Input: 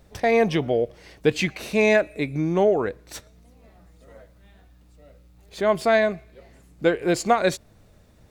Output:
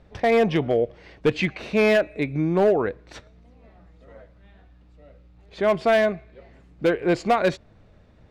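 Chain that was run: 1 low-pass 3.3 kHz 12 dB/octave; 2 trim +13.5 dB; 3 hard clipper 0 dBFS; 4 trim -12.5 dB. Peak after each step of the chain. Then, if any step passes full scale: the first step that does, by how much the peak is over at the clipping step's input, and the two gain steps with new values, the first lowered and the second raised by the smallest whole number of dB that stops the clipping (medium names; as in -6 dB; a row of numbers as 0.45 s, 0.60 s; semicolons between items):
-6.5 dBFS, +7.0 dBFS, 0.0 dBFS, -12.5 dBFS; step 2, 7.0 dB; step 2 +6.5 dB, step 4 -5.5 dB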